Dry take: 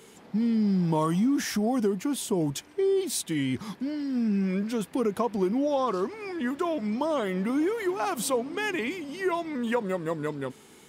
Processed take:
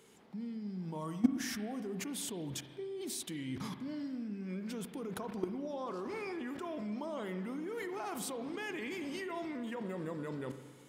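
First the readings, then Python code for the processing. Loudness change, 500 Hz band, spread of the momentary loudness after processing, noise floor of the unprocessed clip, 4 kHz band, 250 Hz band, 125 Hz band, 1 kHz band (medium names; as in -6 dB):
-12.0 dB, -13.5 dB, 3 LU, -53 dBFS, -8.5 dB, -11.5 dB, -12.0 dB, -13.0 dB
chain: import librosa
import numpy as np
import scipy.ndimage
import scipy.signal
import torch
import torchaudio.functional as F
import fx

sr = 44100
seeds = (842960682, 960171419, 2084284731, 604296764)

y = fx.level_steps(x, sr, step_db=22)
y = fx.rev_spring(y, sr, rt60_s=1.5, pass_ms=(38, 53), chirp_ms=40, drr_db=8.5)
y = y * 10.0 ** (3.5 / 20.0)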